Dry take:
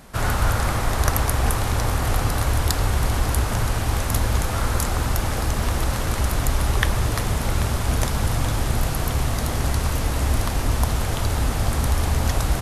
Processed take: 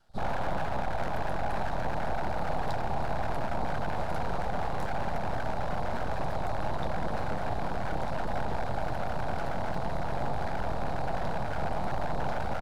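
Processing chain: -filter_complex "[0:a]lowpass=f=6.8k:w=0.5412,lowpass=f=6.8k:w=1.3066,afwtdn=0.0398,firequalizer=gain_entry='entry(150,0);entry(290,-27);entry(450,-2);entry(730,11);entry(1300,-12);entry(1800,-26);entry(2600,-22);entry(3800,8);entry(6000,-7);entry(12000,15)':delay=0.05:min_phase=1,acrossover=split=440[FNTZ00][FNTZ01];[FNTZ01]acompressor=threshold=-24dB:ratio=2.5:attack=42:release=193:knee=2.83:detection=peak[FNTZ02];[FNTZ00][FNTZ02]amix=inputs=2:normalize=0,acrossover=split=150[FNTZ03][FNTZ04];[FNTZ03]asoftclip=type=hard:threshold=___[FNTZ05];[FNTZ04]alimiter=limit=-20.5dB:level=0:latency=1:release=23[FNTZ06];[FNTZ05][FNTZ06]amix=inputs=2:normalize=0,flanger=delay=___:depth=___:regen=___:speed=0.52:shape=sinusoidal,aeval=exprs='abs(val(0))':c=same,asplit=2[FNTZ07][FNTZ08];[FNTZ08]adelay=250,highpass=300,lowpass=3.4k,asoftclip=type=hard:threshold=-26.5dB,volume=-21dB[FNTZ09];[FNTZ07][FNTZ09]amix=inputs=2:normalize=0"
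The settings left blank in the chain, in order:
-24dB, 9.1, 3, -41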